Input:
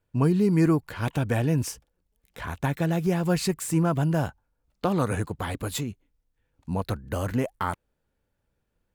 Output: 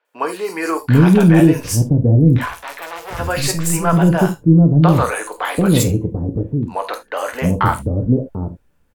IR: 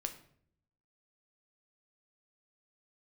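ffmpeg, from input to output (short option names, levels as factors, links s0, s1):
-filter_complex "[0:a]acontrast=78,asettb=1/sr,asplit=3[s0][s1][s2];[s0]atrim=end=2.484[s3];[s1]atrim=start=2.48:end=3.19,asetpts=PTS-STARTPTS,afade=t=in:d=0.004:c=qsin,afade=t=out:st=0.706:d=0.004:c=qsin,volume=21.1,asoftclip=hard,volume=0.0473[s4];[s2]atrim=start=3.186[s5];[s3][s4]acrossfade=d=0.004:c1=hsin:c2=qsin[s6];[s6][s5]acrossfade=d=0.004:c1=qsin:c2=hsin,asettb=1/sr,asplit=3[s7][s8][s9];[s7]atrim=end=6.754[s10];[s8]atrim=start=6.75:end=7.31,asetpts=PTS-STARTPTS,afade=t=in:d=0.004:c=qsin,afade=t=out:st=0.556:d=0.004:c=qsin,highshelf=f=8600:g=-9.5[s11];[s9]atrim=start=7.306[s12];[s10][s11]acrossfade=d=0.004:c1=hsin:c2=qsin[s13];[s13][s12]acrossfade=d=0.004:c1=qsin:c2=hsin,acrossover=split=490|4200[s14][s15][s16];[s16]adelay=50[s17];[s14]adelay=740[s18];[s18][s15][s17]amix=inputs=3:normalize=0[s19];[1:a]atrim=start_sample=2205,atrim=end_sample=3969[s20];[s19][s20]afir=irnorm=-1:irlink=0,alimiter=level_in=2.51:limit=0.891:release=50:level=0:latency=1,volume=0.891" -ar 44100 -c:a libmp3lame -b:a 320k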